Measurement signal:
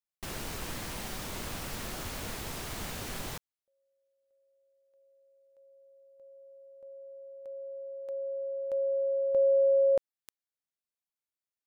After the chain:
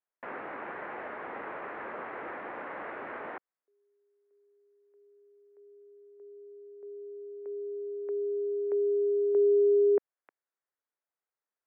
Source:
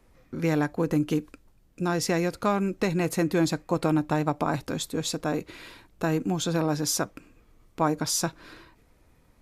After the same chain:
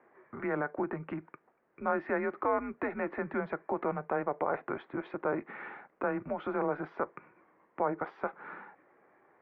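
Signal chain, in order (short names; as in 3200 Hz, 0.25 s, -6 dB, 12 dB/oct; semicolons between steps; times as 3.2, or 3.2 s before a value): in parallel at -0.5 dB: compressor, threshold -33 dBFS; on the sum: limiter -17 dBFS; mistuned SSB -140 Hz 490–2100 Hz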